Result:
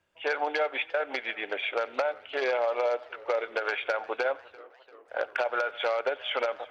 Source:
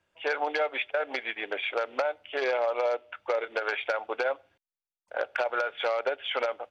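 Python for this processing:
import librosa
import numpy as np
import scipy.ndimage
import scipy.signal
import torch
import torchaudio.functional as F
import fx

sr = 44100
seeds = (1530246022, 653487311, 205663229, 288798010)

y = fx.echo_banded(x, sr, ms=90, feedback_pct=62, hz=1500.0, wet_db=-20.5)
y = fx.echo_warbled(y, sr, ms=347, feedback_pct=62, rate_hz=2.8, cents=147, wet_db=-22.5)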